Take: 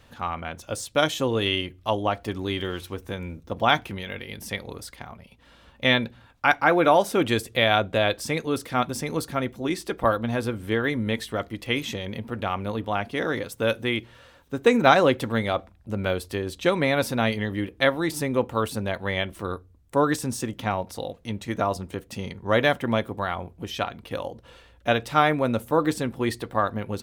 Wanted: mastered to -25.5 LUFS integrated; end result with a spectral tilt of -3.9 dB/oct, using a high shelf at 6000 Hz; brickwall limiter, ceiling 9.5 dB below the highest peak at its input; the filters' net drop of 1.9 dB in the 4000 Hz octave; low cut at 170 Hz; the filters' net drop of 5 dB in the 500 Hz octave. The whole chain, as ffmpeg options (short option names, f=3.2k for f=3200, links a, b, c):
-af "highpass=170,equalizer=f=500:t=o:g=-6,equalizer=f=4k:t=o:g=-3.5,highshelf=f=6k:g=4,volume=4dB,alimiter=limit=-9dB:level=0:latency=1"